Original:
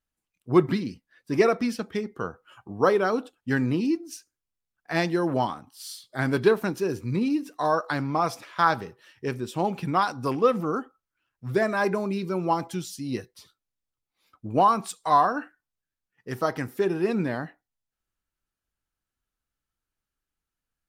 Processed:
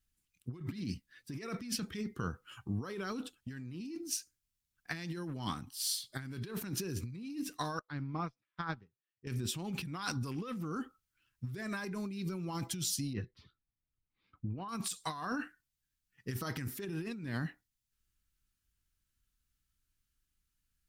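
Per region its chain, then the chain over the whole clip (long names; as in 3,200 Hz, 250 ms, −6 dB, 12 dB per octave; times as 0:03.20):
0:07.79–0:09.27: head-to-tape spacing loss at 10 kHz 27 dB + expander for the loud parts 2.5 to 1, over −46 dBFS
0:13.13–0:14.69: high-frequency loss of the air 300 metres + one half of a high-frequency compander decoder only
whole clip: guitar amp tone stack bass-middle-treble 6-0-2; compressor whose output falls as the input rises −53 dBFS, ratio −1; level +14 dB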